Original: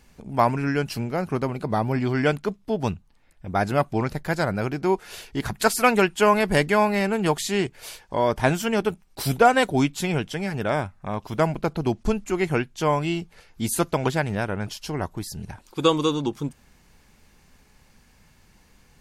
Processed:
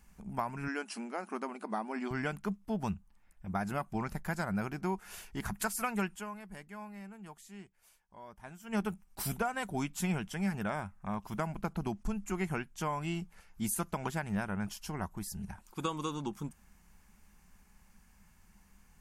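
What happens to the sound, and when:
0:00.68–0:02.11: linear-phase brick-wall band-pass 210–11,000 Hz
0:06.15–0:08.75: duck −19 dB, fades 0.39 s exponential
whole clip: octave-band graphic EQ 125/250/500/2,000/4,000 Hz −9/−10/−10/−3/−11 dB; downward compressor 4 to 1, threshold −29 dBFS; parametric band 200 Hz +12.5 dB 0.57 octaves; level −3 dB

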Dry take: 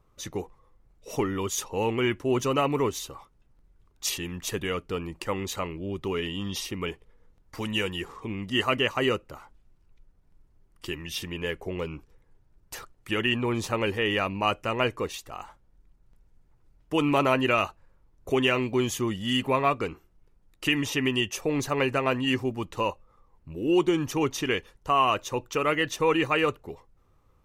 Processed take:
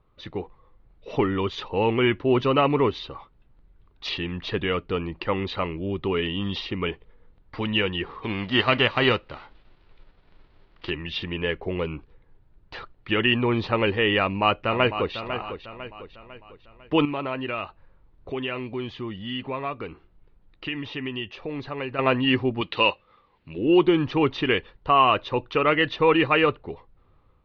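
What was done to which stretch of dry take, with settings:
0:08.22–0:10.89: spectral envelope flattened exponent 0.6
0:14.21–0:15.15: delay throw 500 ms, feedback 45%, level −10 dB
0:17.05–0:21.99: downward compressor 1.5 to 1, threshold −50 dBFS
0:22.61–0:23.58: meter weighting curve D
whole clip: Butterworth low-pass 4,300 Hz 48 dB per octave; automatic gain control gain up to 4.5 dB

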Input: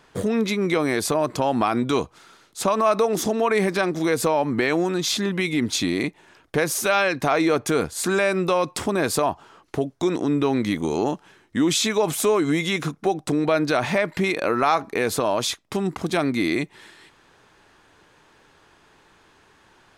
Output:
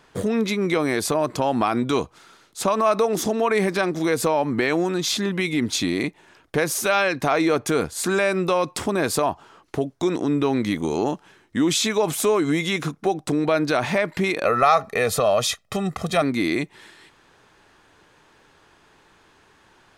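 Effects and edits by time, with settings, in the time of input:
0:14.45–0:16.22: comb filter 1.6 ms, depth 82%

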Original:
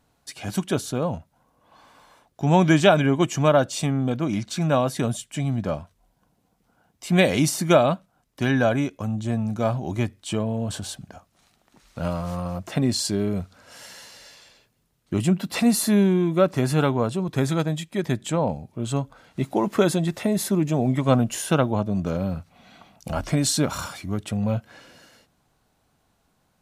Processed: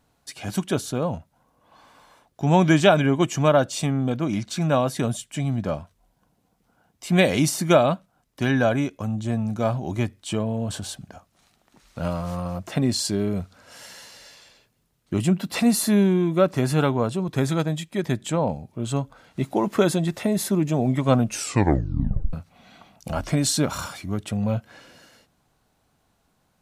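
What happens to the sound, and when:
0:21.24: tape stop 1.09 s

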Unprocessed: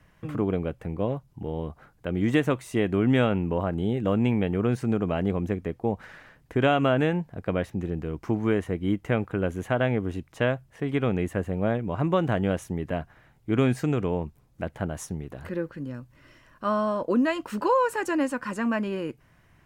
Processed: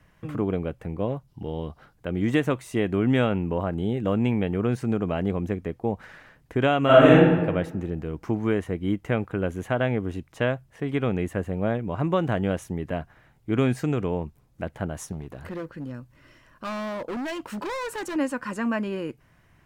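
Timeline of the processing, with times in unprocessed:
0:01.28–0:01.93: gain on a spectral selection 2,700–5,900 Hz +6 dB
0:06.85–0:07.29: thrown reverb, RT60 1.2 s, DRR −9.5 dB
0:15.12–0:18.16: hard clipping −29 dBFS

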